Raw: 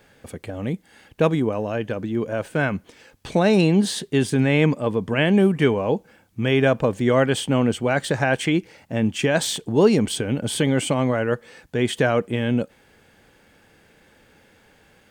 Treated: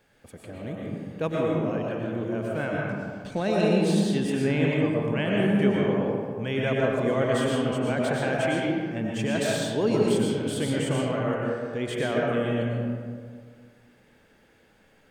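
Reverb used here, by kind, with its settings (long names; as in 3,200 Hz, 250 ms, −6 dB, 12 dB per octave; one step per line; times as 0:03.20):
comb and all-pass reverb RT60 2 s, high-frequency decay 0.4×, pre-delay 75 ms, DRR −3.5 dB
level −10 dB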